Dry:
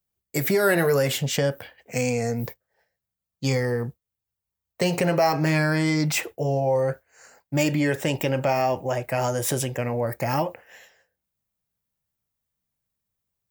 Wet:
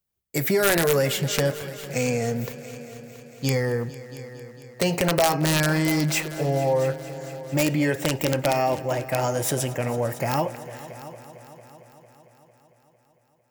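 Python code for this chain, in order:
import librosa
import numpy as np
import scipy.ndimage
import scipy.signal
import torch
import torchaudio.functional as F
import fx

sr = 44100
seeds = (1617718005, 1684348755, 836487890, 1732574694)

y = (np.mod(10.0 ** (11.5 / 20.0) * x + 1.0, 2.0) - 1.0) / 10.0 ** (11.5 / 20.0)
y = fx.echo_heads(y, sr, ms=226, heads='all three', feedback_pct=55, wet_db=-19.5)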